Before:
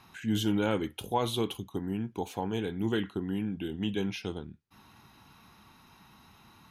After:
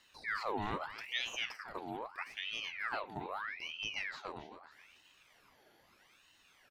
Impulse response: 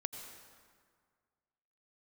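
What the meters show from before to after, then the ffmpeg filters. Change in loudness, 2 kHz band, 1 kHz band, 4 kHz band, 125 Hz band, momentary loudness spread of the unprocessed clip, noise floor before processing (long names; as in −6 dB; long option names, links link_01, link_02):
−7.5 dB, +3.5 dB, −3.5 dB, −2.0 dB, −18.5 dB, 8 LU, −59 dBFS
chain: -filter_complex "[0:a]acrossover=split=4600[link_01][link_02];[link_02]acompressor=threshold=-58dB:ratio=4:attack=1:release=60[link_03];[link_01][link_03]amix=inputs=2:normalize=0,asplit=2[link_04][link_05];[link_05]aecho=0:1:273|546|819|1092:0.266|0.112|0.0469|0.0197[link_06];[link_04][link_06]amix=inputs=2:normalize=0,aeval=exprs='val(0)*sin(2*PI*1700*n/s+1700*0.7/0.79*sin(2*PI*0.79*n/s))':channel_layout=same,volume=-6.5dB"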